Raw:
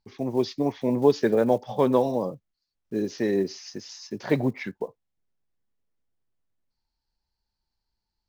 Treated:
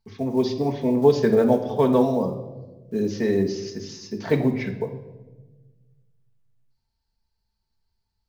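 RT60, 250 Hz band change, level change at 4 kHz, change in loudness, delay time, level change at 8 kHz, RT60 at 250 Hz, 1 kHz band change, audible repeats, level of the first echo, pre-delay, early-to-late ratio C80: 1.2 s, +3.5 dB, +1.5 dB, +3.0 dB, none, n/a, 1.7 s, +1.5 dB, none, none, 4 ms, 12.5 dB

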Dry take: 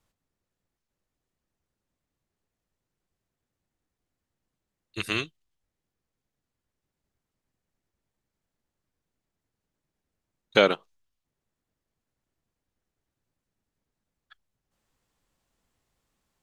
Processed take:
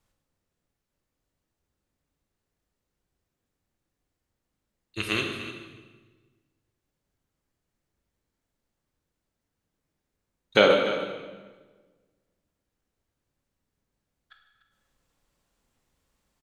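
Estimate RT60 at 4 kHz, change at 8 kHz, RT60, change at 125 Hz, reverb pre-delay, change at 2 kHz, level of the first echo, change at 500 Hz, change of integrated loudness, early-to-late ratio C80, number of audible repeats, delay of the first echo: 1.2 s, +2.0 dB, 1.4 s, +2.0 dB, 15 ms, +2.0 dB, -14.0 dB, +3.5 dB, +1.0 dB, 5.5 dB, 1, 0.296 s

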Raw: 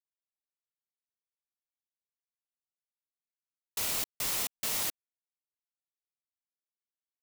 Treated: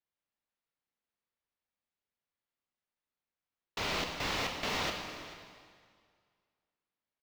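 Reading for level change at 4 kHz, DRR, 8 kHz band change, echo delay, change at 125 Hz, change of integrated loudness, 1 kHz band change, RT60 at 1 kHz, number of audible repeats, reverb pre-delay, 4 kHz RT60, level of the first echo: +1.5 dB, 3.0 dB, -11.5 dB, 0.437 s, +7.5 dB, -4.0 dB, +7.0 dB, 2.0 s, 1, 21 ms, 1.8 s, -18.5 dB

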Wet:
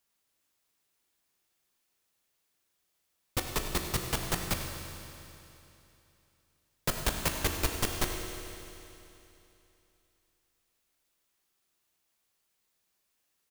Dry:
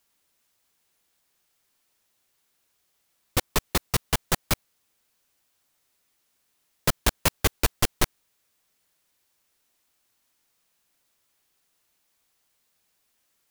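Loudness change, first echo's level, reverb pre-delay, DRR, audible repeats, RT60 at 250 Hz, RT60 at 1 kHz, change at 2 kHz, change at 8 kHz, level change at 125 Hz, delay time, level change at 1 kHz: -6.5 dB, -14.5 dB, 16 ms, 3.0 dB, 1, 3.0 s, 3.0 s, -5.5 dB, -5.5 dB, -5.5 dB, 98 ms, -6.0 dB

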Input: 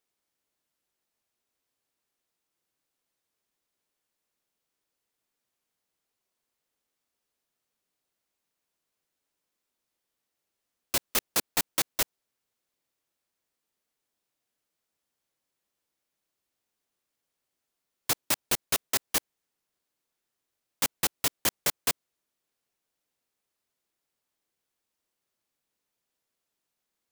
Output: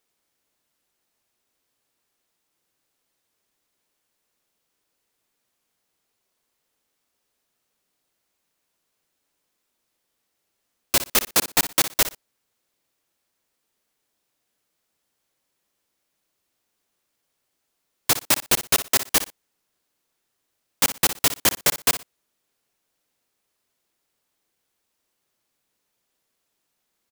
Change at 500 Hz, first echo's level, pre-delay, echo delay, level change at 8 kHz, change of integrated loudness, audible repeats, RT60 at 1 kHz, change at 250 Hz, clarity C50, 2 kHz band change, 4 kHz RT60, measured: +7.5 dB, -12.5 dB, none, 60 ms, +7.5 dB, +7.5 dB, 2, none, +7.5 dB, none, +7.5 dB, none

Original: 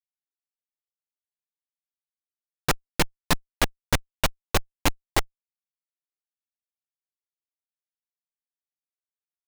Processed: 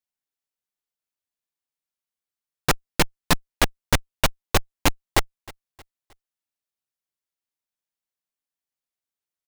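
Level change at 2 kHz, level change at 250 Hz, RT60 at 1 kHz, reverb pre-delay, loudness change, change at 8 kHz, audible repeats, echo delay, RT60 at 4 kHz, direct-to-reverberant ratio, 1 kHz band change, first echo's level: +3.0 dB, +3.0 dB, none, none, +3.0 dB, +3.0 dB, 2, 0.312 s, none, none, +3.0 dB, -23.0 dB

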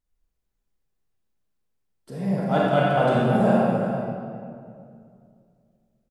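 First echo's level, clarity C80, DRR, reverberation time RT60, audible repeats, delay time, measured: -10.0 dB, -1.0 dB, -5.5 dB, 2.3 s, 1, 0.342 s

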